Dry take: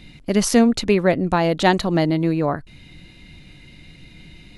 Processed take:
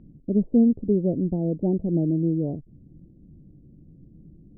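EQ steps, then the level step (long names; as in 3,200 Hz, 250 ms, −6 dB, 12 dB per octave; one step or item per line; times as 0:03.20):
Gaussian smoothing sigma 22 samples
high-frequency loss of the air 410 metres
low-shelf EQ 110 Hz −12 dB
+3.0 dB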